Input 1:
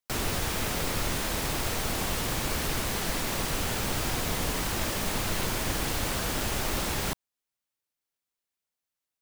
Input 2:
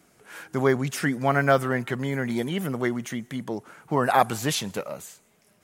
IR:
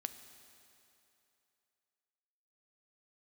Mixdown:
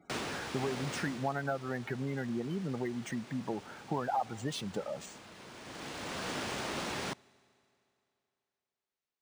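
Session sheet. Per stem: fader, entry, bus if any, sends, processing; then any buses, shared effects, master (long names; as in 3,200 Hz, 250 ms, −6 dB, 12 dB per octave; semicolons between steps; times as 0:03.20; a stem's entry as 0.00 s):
0:00.95 −1.5 dB → 0:01.37 −13 dB → 0:05.38 −13 dB → 0:05.82 −6 dB, 0.00 s, send −11 dB, high-pass filter 160 Hz 12 dB per octave; high-shelf EQ 9,500 Hz −6.5 dB; automatic ducking −12 dB, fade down 0.40 s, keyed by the second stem
−2.5 dB, 0.00 s, no send, downward compressor, threshold −29 dBFS, peak gain reduction 15 dB; parametric band 820 Hz +6 dB 0.3 octaves; gate on every frequency bin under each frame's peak −15 dB strong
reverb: on, RT60 2.9 s, pre-delay 4 ms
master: linearly interpolated sample-rate reduction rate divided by 3×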